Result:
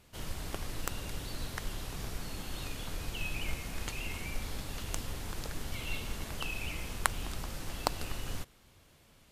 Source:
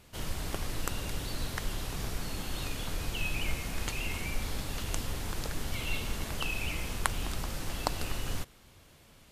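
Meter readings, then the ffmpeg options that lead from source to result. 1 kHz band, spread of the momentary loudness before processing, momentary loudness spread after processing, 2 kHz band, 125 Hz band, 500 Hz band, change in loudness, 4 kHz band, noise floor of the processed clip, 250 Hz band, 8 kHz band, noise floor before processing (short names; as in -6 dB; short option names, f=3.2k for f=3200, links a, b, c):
-1.5 dB, 4 LU, 5 LU, -3.0 dB, -4.0 dB, -3.0 dB, -3.0 dB, -3.5 dB, -62 dBFS, -3.5 dB, -2.5 dB, -58 dBFS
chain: -af "aeval=exprs='0.596*(cos(1*acos(clip(val(0)/0.596,-1,1)))-cos(1*PI/2))+0.0376*(cos(7*acos(clip(val(0)/0.596,-1,1)))-cos(7*PI/2))':c=same,volume=1dB"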